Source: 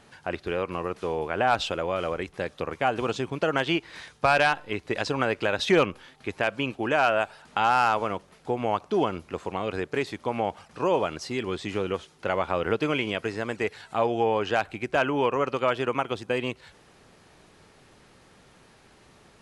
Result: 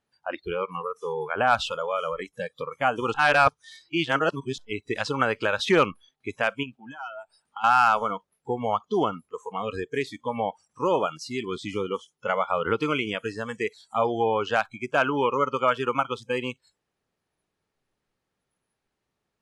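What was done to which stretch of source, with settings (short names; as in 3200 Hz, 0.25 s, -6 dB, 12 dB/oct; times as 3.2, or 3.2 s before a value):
3.14–4.58 reverse
6.63–7.64 compressor 2.5:1, threshold -36 dBFS
whole clip: spectral noise reduction 26 dB; dynamic EQ 1300 Hz, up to +6 dB, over -40 dBFS, Q 2.8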